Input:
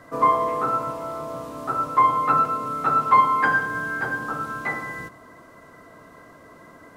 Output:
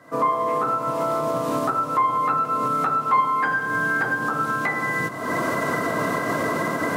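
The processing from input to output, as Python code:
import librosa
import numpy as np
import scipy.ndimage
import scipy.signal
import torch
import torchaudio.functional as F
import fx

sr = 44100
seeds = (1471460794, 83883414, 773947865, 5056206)

y = fx.recorder_agc(x, sr, target_db=-11.5, rise_db_per_s=49.0, max_gain_db=30)
y = scipy.signal.sosfilt(scipy.signal.butter(4, 110.0, 'highpass', fs=sr, output='sos'), y)
y = F.gain(torch.from_numpy(y), -3.5).numpy()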